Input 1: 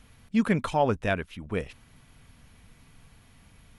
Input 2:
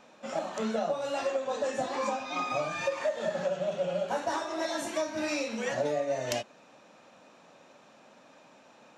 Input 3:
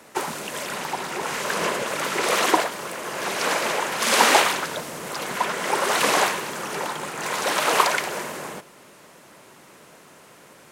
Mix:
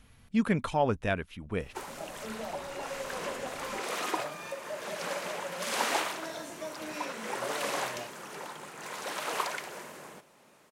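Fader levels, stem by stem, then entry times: −3.0, −9.5, −13.5 decibels; 0.00, 1.65, 1.60 seconds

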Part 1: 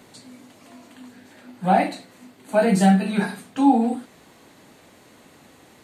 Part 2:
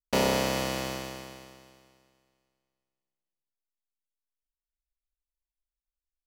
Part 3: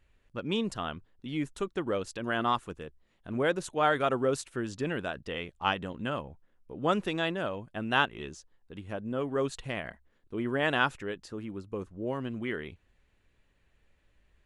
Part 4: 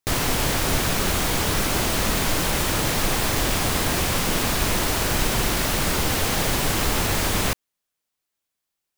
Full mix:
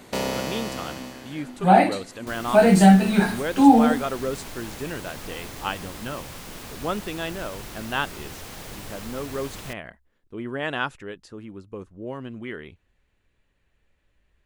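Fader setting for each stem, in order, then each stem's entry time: +3.0, −2.0, −0.5, −16.5 decibels; 0.00, 0.00, 0.00, 2.20 seconds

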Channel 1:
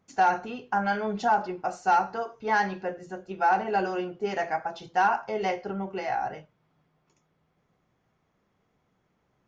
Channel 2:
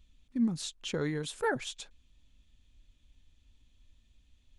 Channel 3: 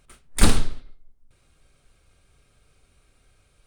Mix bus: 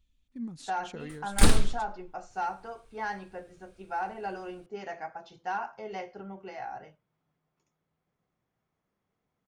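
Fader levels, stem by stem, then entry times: −10.0, −9.0, −3.5 decibels; 0.50, 0.00, 1.00 seconds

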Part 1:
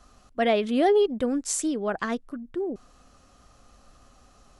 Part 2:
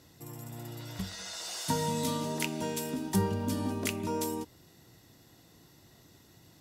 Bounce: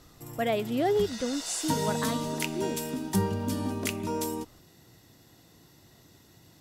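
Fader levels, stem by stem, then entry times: −5.5, +1.5 decibels; 0.00, 0.00 seconds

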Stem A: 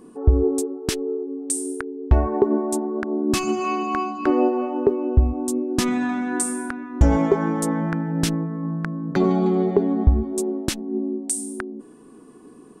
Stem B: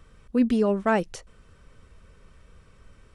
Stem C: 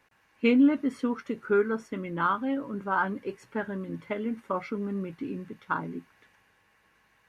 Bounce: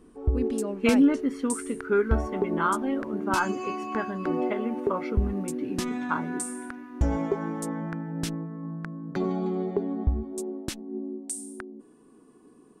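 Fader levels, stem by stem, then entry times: −9.0, −10.0, +0.5 decibels; 0.00, 0.00, 0.40 seconds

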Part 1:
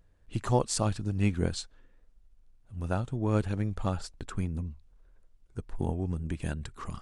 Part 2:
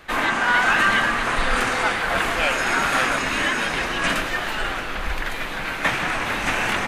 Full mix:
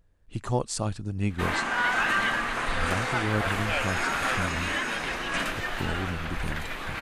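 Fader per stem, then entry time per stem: −1.0, −7.0 decibels; 0.00, 1.30 seconds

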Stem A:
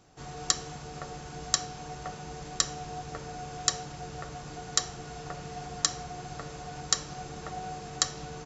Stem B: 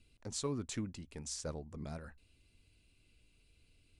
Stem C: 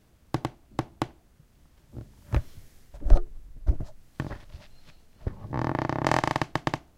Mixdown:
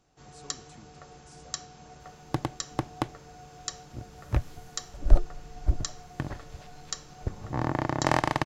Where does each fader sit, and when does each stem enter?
−9.0, −14.5, −0.5 decibels; 0.00, 0.00, 2.00 seconds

